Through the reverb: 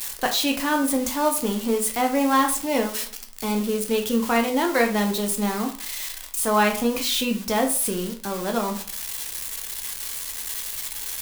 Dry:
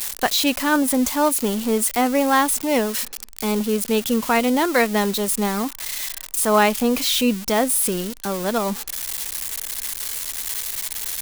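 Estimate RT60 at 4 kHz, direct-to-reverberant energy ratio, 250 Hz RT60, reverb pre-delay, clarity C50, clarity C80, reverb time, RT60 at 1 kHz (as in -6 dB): 0.30 s, 3.0 dB, 0.40 s, 9 ms, 10.5 dB, 14.5 dB, 0.45 s, 0.45 s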